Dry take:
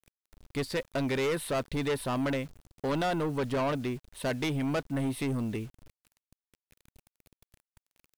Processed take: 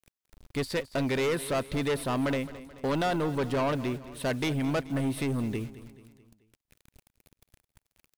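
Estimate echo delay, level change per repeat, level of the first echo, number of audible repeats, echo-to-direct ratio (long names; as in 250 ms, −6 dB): 216 ms, −6.0 dB, −16.0 dB, 4, −15.0 dB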